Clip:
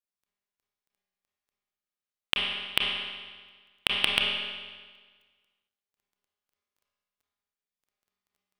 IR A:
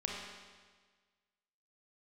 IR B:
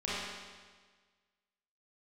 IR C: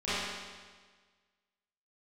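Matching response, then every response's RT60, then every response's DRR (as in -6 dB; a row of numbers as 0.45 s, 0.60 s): A; 1.5 s, 1.5 s, 1.5 s; -2.0 dB, -9.5 dB, -16.0 dB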